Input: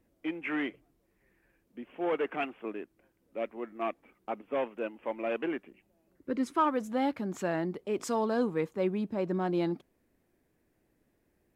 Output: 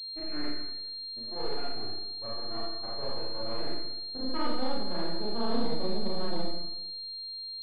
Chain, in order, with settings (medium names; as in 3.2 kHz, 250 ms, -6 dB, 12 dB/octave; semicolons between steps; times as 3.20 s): granular stretch 0.66×, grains 74 ms; half-wave rectifier; distance through air 260 m; Schroeder reverb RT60 0.99 s, combs from 27 ms, DRR -6.5 dB; class-D stage that switches slowly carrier 4.2 kHz; trim -5 dB